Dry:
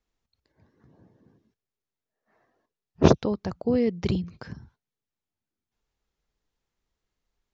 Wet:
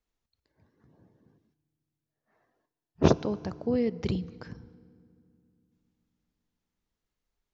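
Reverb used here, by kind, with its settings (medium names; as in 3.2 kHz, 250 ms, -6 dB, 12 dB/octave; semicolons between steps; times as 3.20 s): FDN reverb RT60 2.4 s, low-frequency decay 1.4×, high-frequency decay 0.7×, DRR 18.5 dB; trim -4 dB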